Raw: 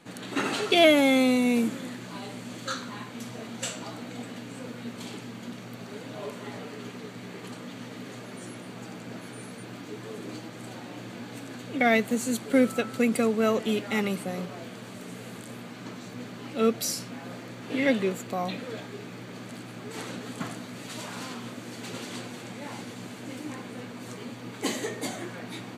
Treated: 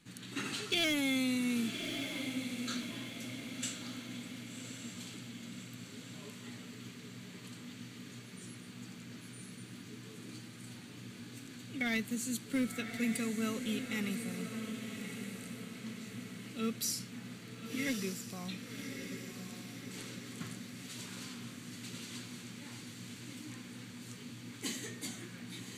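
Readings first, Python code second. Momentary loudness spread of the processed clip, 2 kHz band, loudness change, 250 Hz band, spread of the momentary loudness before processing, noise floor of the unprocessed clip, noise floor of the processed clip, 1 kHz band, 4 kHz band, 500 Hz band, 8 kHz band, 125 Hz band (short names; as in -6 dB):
14 LU, -8.5 dB, -10.5 dB, -9.0 dB, 17 LU, -43 dBFS, -50 dBFS, -16.5 dB, -6.0 dB, -17.5 dB, -4.0 dB, -6.0 dB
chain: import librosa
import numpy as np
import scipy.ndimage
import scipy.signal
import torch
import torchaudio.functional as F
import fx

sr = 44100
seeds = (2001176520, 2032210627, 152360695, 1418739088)

y = np.clip(10.0 ** (13.5 / 20.0) * x, -1.0, 1.0) / 10.0 ** (13.5 / 20.0)
y = fx.tone_stack(y, sr, knobs='6-0-2')
y = fx.echo_diffused(y, sr, ms=1134, feedback_pct=51, wet_db=-7.0)
y = y * librosa.db_to_amplitude(9.5)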